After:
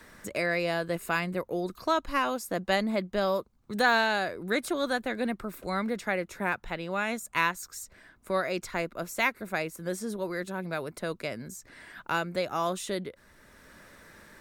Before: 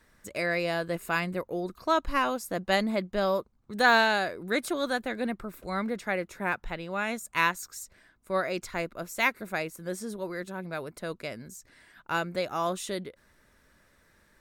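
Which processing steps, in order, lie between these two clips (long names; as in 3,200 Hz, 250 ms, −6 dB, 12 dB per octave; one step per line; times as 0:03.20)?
multiband upward and downward compressor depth 40%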